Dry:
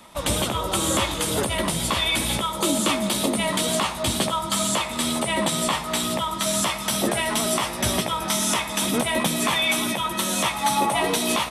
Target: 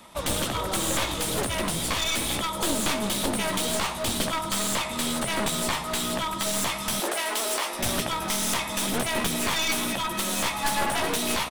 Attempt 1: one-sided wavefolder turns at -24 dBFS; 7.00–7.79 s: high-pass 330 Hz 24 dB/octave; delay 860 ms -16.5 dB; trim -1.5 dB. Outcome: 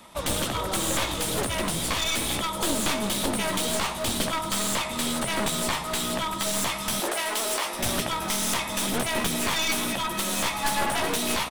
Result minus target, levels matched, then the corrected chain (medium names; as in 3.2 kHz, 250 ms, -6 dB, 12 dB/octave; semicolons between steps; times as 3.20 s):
echo-to-direct +6.5 dB
one-sided wavefolder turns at -24 dBFS; 7.00–7.79 s: high-pass 330 Hz 24 dB/octave; delay 860 ms -23 dB; trim -1.5 dB